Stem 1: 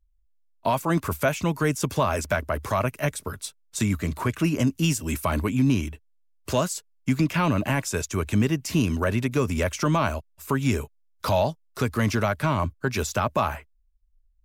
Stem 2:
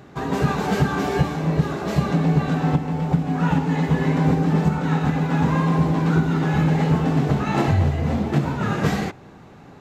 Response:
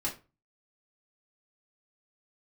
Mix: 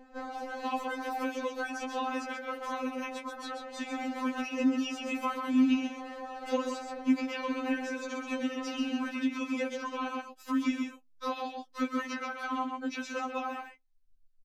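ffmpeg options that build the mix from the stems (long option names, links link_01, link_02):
-filter_complex "[0:a]highshelf=frequency=7100:width_type=q:width=1.5:gain=-6.5,volume=-1dB,asplit=3[link_01][link_02][link_03];[link_02]volume=-16dB[link_04];[link_03]volume=-7dB[link_05];[1:a]aeval=exprs='0.158*(abs(mod(val(0)/0.158+3,4)-2)-1)':channel_layout=same,acompressor=threshold=-23dB:ratio=6,aeval=exprs='val(0)*sin(2*PI*380*n/s)':channel_layout=same,volume=-10dB,asplit=2[link_06][link_07];[link_07]volume=-5.5dB[link_08];[2:a]atrim=start_sample=2205[link_09];[link_04][link_08]amix=inputs=2:normalize=0[link_10];[link_10][link_09]afir=irnorm=-1:irlink=0[link_11];[link_05]aecho=0:1:130:1[link_12];[link_01][link_06][link_11][link_12]amix=inputs=4:normalize=0,highshelf=frequency=11000:gain=-10.5,acrossover=split=200|940|3400[link_13][link_14][link_15][link_16];[link_13]acompressor=threshold=-58dB:ratio=4[link_17];[link_14]acompressor=threshold=-29dB:ratio=4[link_18];[link_15]acompressor=threshold=-35dB:ratio=4[link_19];[link_16]acompressor=threshold=-51dB:ratio=4[link_20];[link_17][link_18][link_19][link_20]amix=inputs=4:normalize=0,afftfilt=real='re*3.46*eq(mod(b,12),0)':imag='im*3.46*eq(mod(b,12),0)':win_size=2048:overlap=0.75"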